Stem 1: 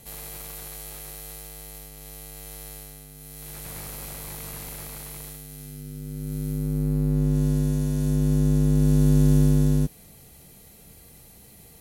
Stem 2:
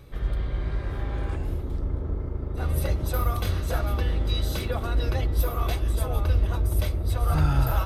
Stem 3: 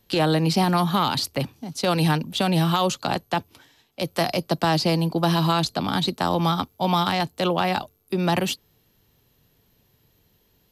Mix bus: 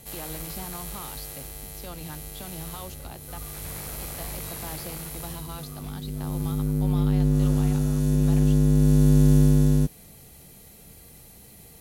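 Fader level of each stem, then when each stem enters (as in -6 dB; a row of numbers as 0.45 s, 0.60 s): +1.0 dB, -19.0 dB, -19.5 dB; 0.00 s, 0.15 s, 0.00 s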